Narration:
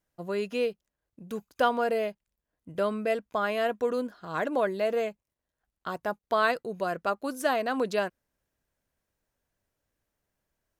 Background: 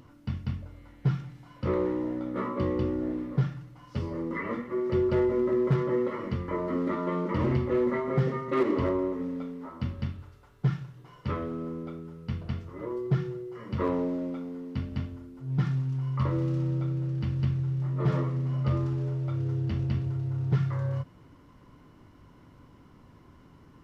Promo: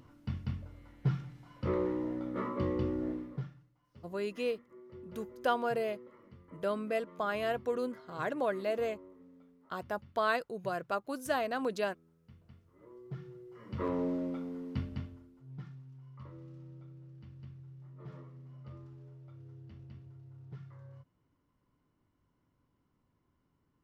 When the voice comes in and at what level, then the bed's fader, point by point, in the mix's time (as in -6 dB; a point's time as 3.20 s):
3.85 s, -5.5 dB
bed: 3.10 s -4.5 dB
3.79 s -24.5 dB
12.62 s -24.5 dB
14.09 s -3 dB
14.76 s -3 dB
15.77 s -22 dB